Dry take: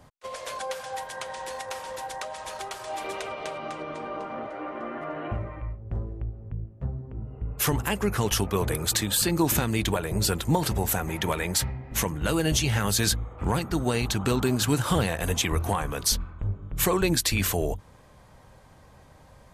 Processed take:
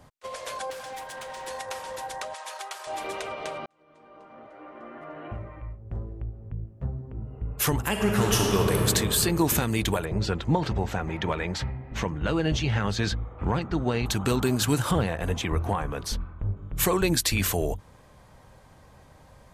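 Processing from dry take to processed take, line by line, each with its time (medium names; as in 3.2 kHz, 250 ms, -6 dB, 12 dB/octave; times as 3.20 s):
0.70–1.47 s: hard clipper -35 dBFS
2.34–2.87 s: high-pass 690 Hz
3.66–6.79 s: fade in
7.89–8.85 s: reverb throw, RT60 2.7 s, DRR -1 dB
10.05–14.06 s: distance through air 170 m
14.91–16.57 s: low-pass 1.9 kHz 6 dB/octave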